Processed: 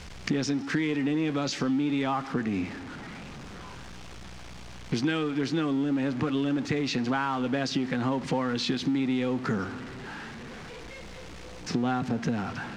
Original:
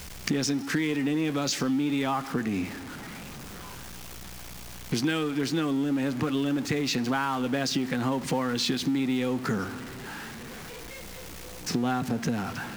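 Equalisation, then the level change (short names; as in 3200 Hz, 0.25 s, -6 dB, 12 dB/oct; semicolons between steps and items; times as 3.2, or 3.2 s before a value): air absorption 96 m; 0.0 dB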